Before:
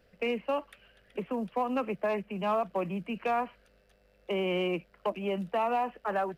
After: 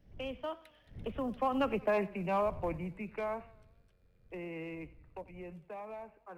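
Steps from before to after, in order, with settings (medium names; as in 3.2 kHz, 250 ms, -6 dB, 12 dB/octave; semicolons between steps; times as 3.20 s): wind noise 91 Hz -47 dBFS; Doppler pass-by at 1.84 s, 37 m/s, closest 22 m; modulated delay 93 ms, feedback 48%, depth 91 cents, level -20 dB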